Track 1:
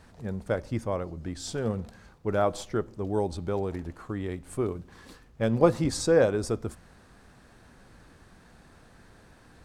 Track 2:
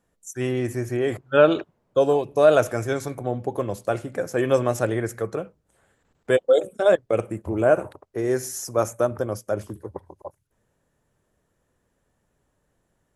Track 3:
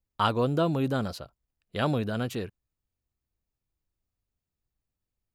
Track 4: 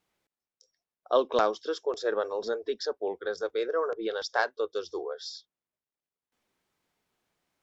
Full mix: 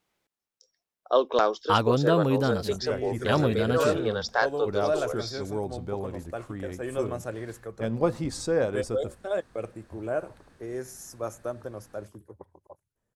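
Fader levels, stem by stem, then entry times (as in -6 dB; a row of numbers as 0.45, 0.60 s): -4.0, -11.5, +2.5, +2.0 dB; 2.40, 2.45, 1.50, 0.00 s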